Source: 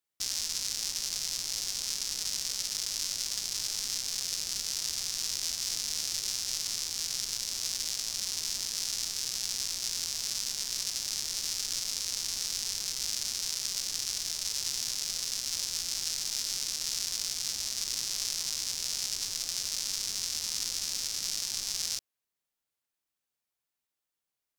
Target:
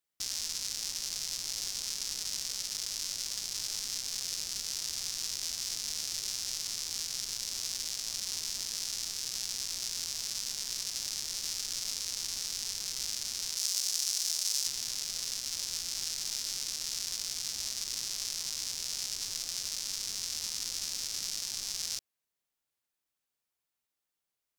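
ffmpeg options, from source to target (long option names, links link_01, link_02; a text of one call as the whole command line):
ffmpeg -i in.wav -filter_complex "[0:a]alimiter=limit=-18dB:level=0:latency=1:release=182,asettb=1/sr,asplit=3[link_01][link_02][link_03];[link_01]atrim=end=13.574[link_04];[link_02]atrim=start=13.57:end=14.67,asetpts=PTS-STARTPTS,afade=type=in:duration=0.004:curve=qsin,afade=type=out:start_time=1.096:duration=0.004:curve=qsin,bass=frequency=250:gain=-15,treble=frequency=4000:gain=6[link_05];[link_03]atrim=start=14.666[link_06];[link_04][link_05]acrossfade=duration=0.004:curve1=hsin:curve2=qsin[link_07];[link_07][link_06]acrossfade=duration=0.004:curve1=qsin:curve2=hsin" out.wav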